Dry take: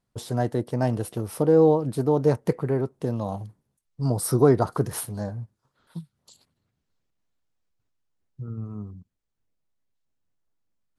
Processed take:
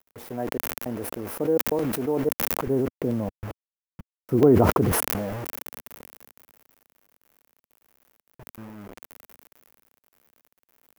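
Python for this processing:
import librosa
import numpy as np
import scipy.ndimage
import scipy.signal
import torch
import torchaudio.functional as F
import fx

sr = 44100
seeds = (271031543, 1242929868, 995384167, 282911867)

y = scipy.signal.sosfilt(scipy.signal.butter(2, 50.0, 'highpass', fs=sr, output='sos'), x)
y = fx.step_gate(y, sr, bpm=105, pattern='xxxx..xxxxx.', floor_db=-60.0, edge_ms=4.5)
y = fx.dmg_crackle(y, sr, seeds[0], per_s=160.0, level_db=-37.0)
y = fx.tilt_eq(y, sr, slope=-3.5, at=(2.67, 4.92))
y = fx.quant_dither(y, sr, seeds[1], bits=6, dither='none')
y = fx.graphic_eq(y, sr, hz=(125, 250, 500, 4000, 8000), db=(-9, 4, 3, -10, -9))
y = fx.buffer_crackle(y, sr, first_s=0.47, period_s=0.66, block=128, kind='zero')
y = fx.sustainer(y, sr, db_per_s=22.0)
y = y * librosa.db_to_amplitude(-7.0)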